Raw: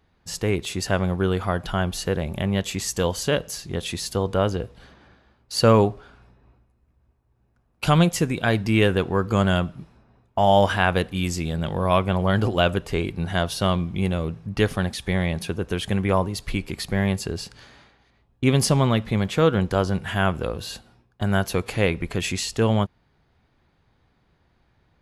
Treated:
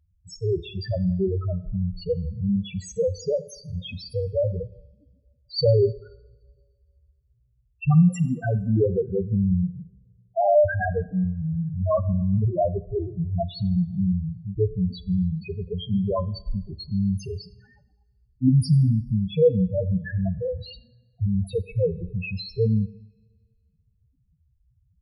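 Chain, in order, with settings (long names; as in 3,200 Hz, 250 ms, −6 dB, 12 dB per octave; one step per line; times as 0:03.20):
spectral peaks only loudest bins 2
coupled-rooms reverb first 0.78 s, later 2 s, from −20 dB, DRR 15 dB
level +4.5 dB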